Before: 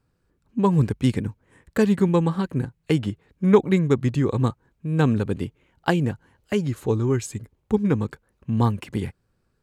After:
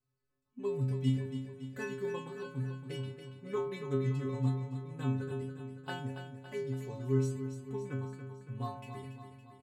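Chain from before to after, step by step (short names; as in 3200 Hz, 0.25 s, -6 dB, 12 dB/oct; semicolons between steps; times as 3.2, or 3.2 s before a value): metallic resonator 130 Hz, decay 0.82 s, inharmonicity 0.008; feedback echo 0.281 s, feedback 58%, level -9 dB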